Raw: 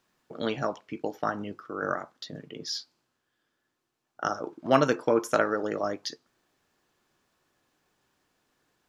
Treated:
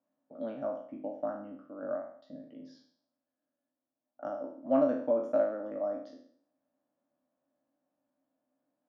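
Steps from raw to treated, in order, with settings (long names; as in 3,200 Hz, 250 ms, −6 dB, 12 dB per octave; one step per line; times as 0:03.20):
peak hold with a decay on every bin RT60 0.58 s
pair of resonant band-passes 400 Hz, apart 1.1 octaves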